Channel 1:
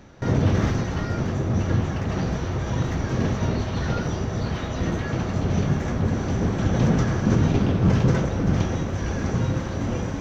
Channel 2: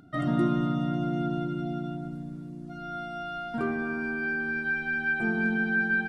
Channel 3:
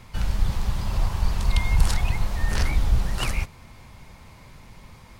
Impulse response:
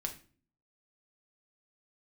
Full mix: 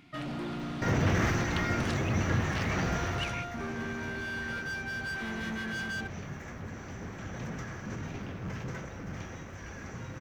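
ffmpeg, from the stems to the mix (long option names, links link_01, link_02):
-filter_complex "[0:a]highshelf=frequency=2800:width_type=q:width=1.5:gain=-9,crystalizer=i=9:c=0,asoftclip=type=tanh:threshold=-11dB,adelay=600,volume=-6.5dB,afade=type=out:start_time=3.06:duration=0.38:silence=0.251189[link_01];[1:a]volume=29.5dB,asoftclip=hard,volume=-29.5dB,volume=-5dB[link_02];[2:a]bandpass=frequency=2700:width_type=q:width=1.7:csg=0,volume=-4.5dB[link_03];[link_01][link_02][link_03]amix=inputs=3:normalize=0"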